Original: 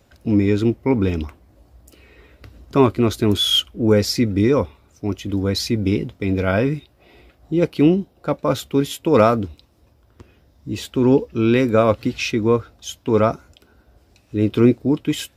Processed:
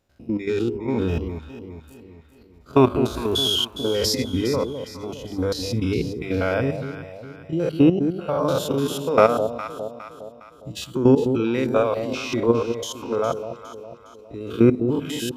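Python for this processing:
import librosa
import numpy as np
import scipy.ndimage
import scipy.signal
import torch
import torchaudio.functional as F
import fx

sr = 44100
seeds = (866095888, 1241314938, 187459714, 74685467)

p1 = fx.spec_steps(x, sr, hold_ms=100)
p2 = fx.rider(p1, sr, range_db=5, speed_s=0.5)
p3 = p1 + (p2 * 10.0 ** (1.0 / 20.0))
p4 = fx.noise_reduce_blind(p3, sr, reduce_db=11)
p5 = fx.hum_notches(p4, sr, base_hz=50, count=5)
p6 = fx.level_steps(p5, sr, step_db=10)
p7 = p6 + fx.echo_alternate(p6, sr, ms=205, hz=820.0, feedback_pct=66, wet_db=-8.0, dry=0)
y = p7 * 10.0 ** (-2.0 / 20.0)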